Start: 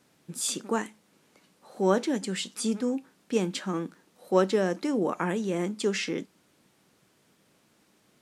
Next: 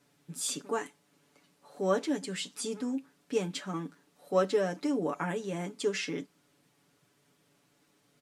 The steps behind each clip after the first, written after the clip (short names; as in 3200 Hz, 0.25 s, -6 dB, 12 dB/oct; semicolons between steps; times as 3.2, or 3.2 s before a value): comb 7 ms, depth 80%; gain -6 dB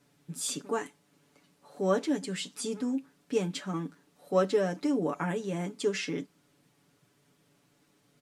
low shelf 250 Hz +5 dB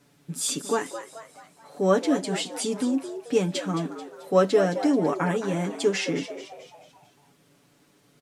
frequency-shifting echo 0.218 s, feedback 47%, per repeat +110 Hz, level -11.5 dB; gain +6 dB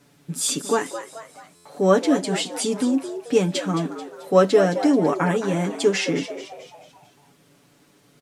stuck buffer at 1.55, samples 512, times 8; gain +4 dB